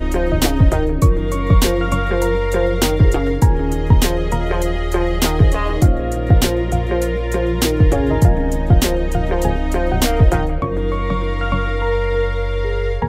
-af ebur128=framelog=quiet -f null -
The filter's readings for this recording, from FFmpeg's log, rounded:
Integrated loudness:
  I:         -17.3 LUFS
  Threshold: -27.3 LUFS
Loudness range:
  LRA:         2.2 LU
  Threshold: -37.2 LUFS
  LRA low:   -18.7 LUFS
  LRA high:  -16.5 LUFS